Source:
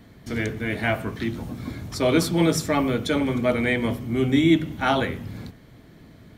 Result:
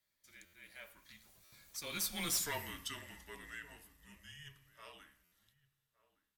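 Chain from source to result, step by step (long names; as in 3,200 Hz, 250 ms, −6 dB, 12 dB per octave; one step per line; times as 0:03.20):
source passing by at 0:02.39, 32 m/s, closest 6.9 metres
first difference
soft clipping −33 dBFS, distortion −7 dB
low-shelf EQ 150 Hz +5 dB
slap from a distant wall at 200 metres, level −19 dB
on a send at −8 dB: convolution reverb RT60 0.70 s, pre-delay 3 ms
on the sum: frequency shifter −160 Hz
buffer that repeats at 0:00.45/0:01.44/0:05.24, samples 512, times 6
level +2.5 dB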